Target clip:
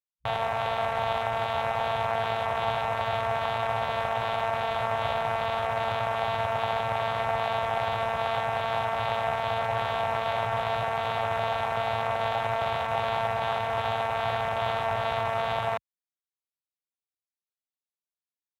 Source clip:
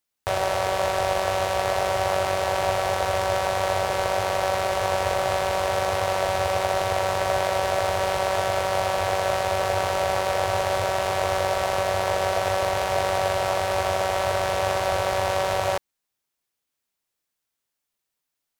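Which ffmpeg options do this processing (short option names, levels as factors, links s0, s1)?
-af "afwtdn=0.0251,equalizer=f=3100:w=4.6:g=5.5,asetrate=52444,aresample=44100,atempo=0.840896,volume=0.631"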